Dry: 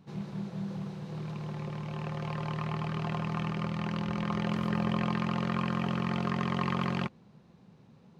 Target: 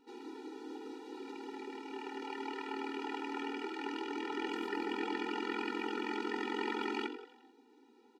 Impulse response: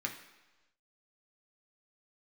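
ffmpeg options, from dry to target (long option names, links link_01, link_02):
-filter_complex "[0:a]asplit=6[link_01][link_02][link_03][link_04][link_05][link_06];[link_02]adelay=87,afreqshift=120,volume=-13.5dB[link_07];[link_03]adelay=174,afreqshift=240,volume=-19dB[link_08];[link_04]adelay=261,afreqshift=360,volume=-24.5dB[link_09];[link_05]adelay=348,afreqshift=480,volume=-30dB[link_10];[link_06]adelay=435,afreqshift=600,volume=-35.6dB[link_11];[link_01][link_07][link_08][link_09][link_10][link_11]amix=inputs=6:normalize=0,afftfilt=real='re*eq(mod(floor(b*sr/1024/250),2),1)':imag='im*eq(mod(floor(b*sr/1024/250),2),1)':win_size=1024:overlap=0.75,volume=1dB"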